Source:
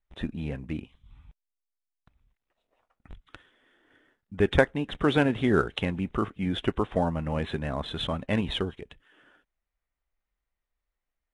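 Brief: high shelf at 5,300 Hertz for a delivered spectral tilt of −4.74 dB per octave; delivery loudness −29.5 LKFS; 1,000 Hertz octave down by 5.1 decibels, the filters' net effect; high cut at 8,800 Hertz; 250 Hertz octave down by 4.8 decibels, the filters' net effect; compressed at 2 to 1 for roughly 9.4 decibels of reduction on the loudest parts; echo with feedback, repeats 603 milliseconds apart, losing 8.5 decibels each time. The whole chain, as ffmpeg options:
ffmpeg -i in.wav -af "lowpass=8800,equalizer=frequency=250:width_type=o:gain=-6,equalizer=frequency=1000:width_type=o:gain=-6.5,highshelf=frequency=5300:gain=-6,acompressor=threshold=-34dB:ratio=2,aecho=1:1:603|1206|1809|2412:0.376|0.143|0.0543|0.0206,volume=7dB" out.wav

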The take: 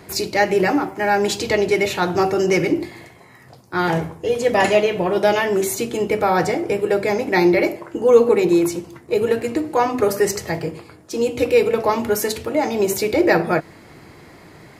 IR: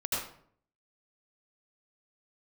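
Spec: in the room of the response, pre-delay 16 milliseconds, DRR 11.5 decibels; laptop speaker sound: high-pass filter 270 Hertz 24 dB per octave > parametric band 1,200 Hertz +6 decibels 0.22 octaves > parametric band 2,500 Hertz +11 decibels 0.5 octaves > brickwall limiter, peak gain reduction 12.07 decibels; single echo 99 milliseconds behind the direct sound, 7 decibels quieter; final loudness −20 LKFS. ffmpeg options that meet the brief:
-filter_complex "[0:a]aecho=1:1:99:0.447,asplit=2[link_01][link_02];[1:a]atrim=start_sample=2205,adelay=16[link_03];[link_02][link_03]afir=irnorm=-1:irlink=0,volume=-18dB[link_04];[link_01][link_04]amix=inputs=2:normalize=0,highpass=frequency=270:width=0.5412,highpass=frequency=270:width=1.3066,equalizer=frequency=1200:width_type=o:width=0.22:gain=6,equalizer=frequency=2500:width_type=o:width=0.5:gain=11,volume=1.5dB,alimiter=limit=-10.5dB:level=0:latency=1"

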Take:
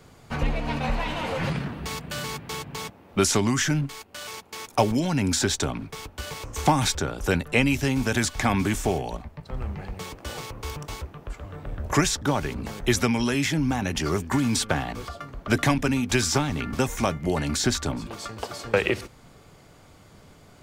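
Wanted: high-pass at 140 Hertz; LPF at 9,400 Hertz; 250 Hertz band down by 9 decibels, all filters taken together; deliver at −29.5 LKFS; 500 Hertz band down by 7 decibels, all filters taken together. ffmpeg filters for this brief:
ffmpeg -i in.wav -af "highpass=140,lowpass=9400,equalizer=frequency=250:width_type=o:gain=-9,equalizer=frequency=500:width_type=o:gain=-6" out.wav

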